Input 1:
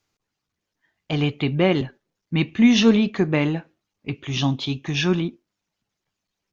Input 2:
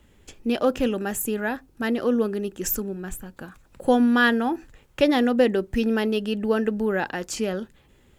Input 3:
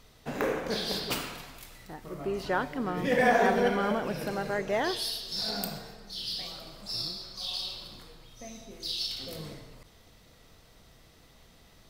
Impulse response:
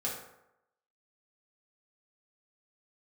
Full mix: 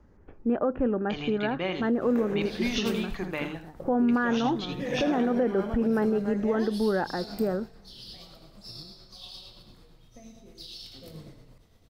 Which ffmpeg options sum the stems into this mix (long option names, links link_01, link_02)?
-filter_complex "[0:a]lowshelf=frequency=340:gain=-10,bandreject=frequency=50:width_type=h:width=6,bandreject=frequency=100:width_type=h:width=6,bandreject=frequency=150:width_type=h:width=6,bandreject=frequency=200:width_type=h:width=6,bandreject=frequency=250:width_type=h:width=6,bandreject=frequency=300:width_type=h:width=6,bandreject=frequency=350:width_type=h:width=6,bandreject=frequency=400:width_type=h:width=6,bandreject=frequency=450:width_type=h:width=6,volume=-8dB,asplit=2[link_01][link_02];[link_02]volume=-10.5dB[link_03];[1:a]lowpass=frequency=1500:width=0.5412,lowpass=frequency=1500:width=1.3066,volume=-0.5dB[link_04];[2:a]lowshelf=frequency=490:gain=9,tremolo=f=8.8:d=0.4,adelay=1750,volume=-8.5dB,asplit=2[link_05][link_06];[link_06]volume=-12.5dB[link_07];[link_03][link_07]amix=inputs=2:normalize=0,aecho=0:1:81:1[link_08];[link_01][link_04][link_05][link_08]amix=inputs=4:normalize=0,alimiter=limit=-17dB:level=0:latency=1:release=96"